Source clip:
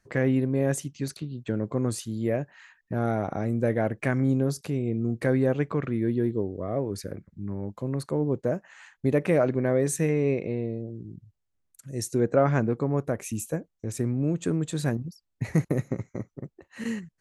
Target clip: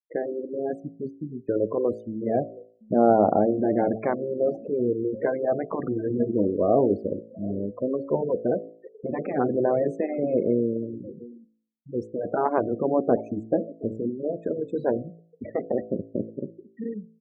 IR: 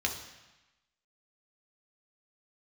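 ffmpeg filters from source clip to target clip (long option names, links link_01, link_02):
-af "afftfilt=real='re*lt(hypot(re,im),0.355)':imag='im*lt(hypot(re,im),0.355)':win_size=1024:overlap=0.75,dynaudnorm=framelen=120:gausssize=13:maxgain=6dB,aphaser=in_gain=1:out_gain=1:delay=2.1:decay=0.3:speed=0.3:type=sinusoidal,lowshelf=frequency=170:width_type=q:width=1.5:gain=-7,aecho=1:1:723|1446|2169:0.141|0.048|0.0163,afftfilt=real='re*gte(hypot(re,im),0.0708)':imag='im*gte(hypot(re,im),0.0708)':win_size=1024:overlap=0.75,lowpass=1000,equalizer=frequency=650:width_type=o:width=1.5:gain=7,bandreject=frequency=55.39:width_type=h:width=4,bandreject=frequency=110.78:width_type=h:width=4,bandreject=frequency=166.17:width_type=h:width=4,bandreject=frequency=221.56:width_type=h:width=4,bandreject=frequency=276.95:width_type=h:width=4,bandreject=frequency=332.34:width_type=h:width=4,bandreject=frequency=387.73:width_type=h:width=4,bandreject=frequency=443.12:width_type=h:width=4,bandreject=frequency=498.51:width_type=h:width=4,bandreject=frequency=553.9:width_type=h:width=4,bandreject=frequency=609.29:width_type=h:width=4,bandreject=frequency=664.68:width_type=h:width=4,bandreject=frequency=720.07:width_type=h:width=4,volume=-2.5dB"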